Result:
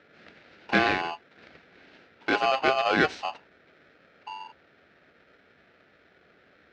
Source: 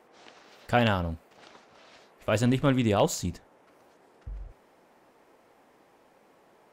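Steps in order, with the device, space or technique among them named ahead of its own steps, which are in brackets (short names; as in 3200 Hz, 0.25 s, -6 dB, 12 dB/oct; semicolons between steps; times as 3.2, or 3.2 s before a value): ring modulator pedal into a guitar cabinet (polarity switched at an audio rate 930 Hz; speaker cabinet 92–3800 Hz, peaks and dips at 120 Hz -8 dB, 1100 Hz -9 dB, 3300 Hz -6 dB); gain +2.5 dB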